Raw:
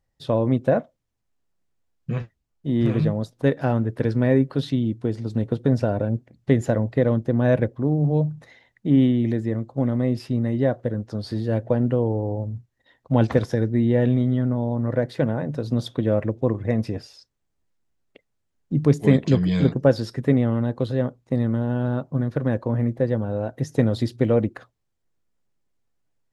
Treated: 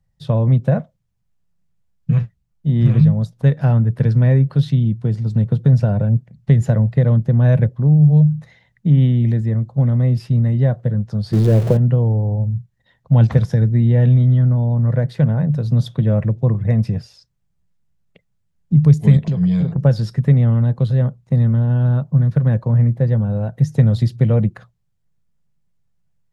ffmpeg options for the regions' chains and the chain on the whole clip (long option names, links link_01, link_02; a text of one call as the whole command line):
ffmpeg -i in.wav -filter_complex "[0:a]asettb=1/sr,asplit=3[link_01][link_02][link_03];[link_01]atrim=end=11.334[link_04];[link_02]atrim=start=11.33:end=11.77,asetpts=PTS-STARTPTS,afade=type=in:duration=0.004:curve=qsin,afade=type=out:start_time=0.436:duration=0.004:curve=qsin,aeval=exprs='val(0)+0.5*0.0473*sgn(val(0))':channel_layout=same,equalizer=frequency=390:width_type=o:width=0.97:gain=14.5[link_05];[link_03]atrim=start=11.766[link_06];[link_04][link_05]acrossfade=duration=0.004:curve1=hsin:curve2=qsin[link_07];[link_07][link_06]acrossfade=duration=0.004:curve1=qsin:curve2=hsin,asettb=1/sr,asplit=3[link_08][link_09][link_10];[link_08]atrim=end=19.244[link_11];[link_09]atrim=start=19.24:end=19.78,asetpts=PTS-STARTPTS,afade=type=in:duration=0.004:curve=qsin,afade=type=out:start_time=0.536:duration=0.004:curve=qsin,equalizer=frequency=630:width=0.7:gain=9,acompressor=threshold=-24dB:ratio=6:attack=3.2:release=140:knee=1:detection=peak[link_12];[link_10]atrim=start=19.776[link_13];[link_11][link_12]acrossfade=duration=0.004:curve1=hsin:curve2=qsin[link_14];[link_14][link_13]acrossfade=duration=0.004:curve1=qsin:curve2=hsin,lowshelf=frequency=220:width_type=q:width=3:gain=8,acrossover=split=120|3000[link_15][link_16][link_17];[link_16]acompressor=threshold=-12dB:ratio=6[link_18];[link_15][link_18][link_17]amix=inputs=3:normalize=0" out.wav